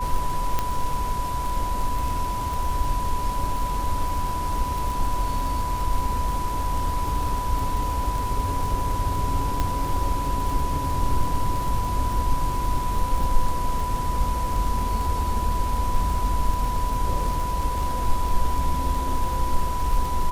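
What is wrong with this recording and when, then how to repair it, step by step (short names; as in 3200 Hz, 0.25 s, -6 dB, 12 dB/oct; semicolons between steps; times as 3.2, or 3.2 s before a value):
crackle 49/s -28 dBFS
tone 990 Hz -27 dBFS
0.59 pop -9 dBFS
9.6 pop -11 dBFS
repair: de-click; notch 990 Hz, Q 30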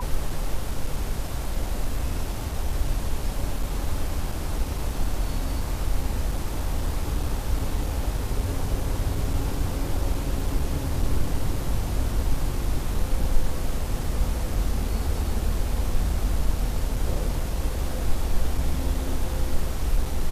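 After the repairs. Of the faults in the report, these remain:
none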